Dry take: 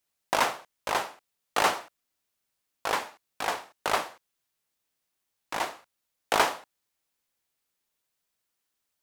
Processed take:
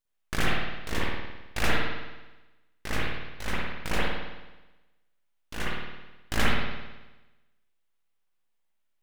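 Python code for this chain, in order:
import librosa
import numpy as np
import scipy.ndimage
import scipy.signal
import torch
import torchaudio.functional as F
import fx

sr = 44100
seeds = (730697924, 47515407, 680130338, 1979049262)

y = np.abs(x)
y = fx.rev_spring(y, sr, rt60_s=1.1, pass_ms=(53,), chirp_ms=55, drr_db=-7.0)
y = F.gain(torch.from_numpy(y), -5.0).numpy()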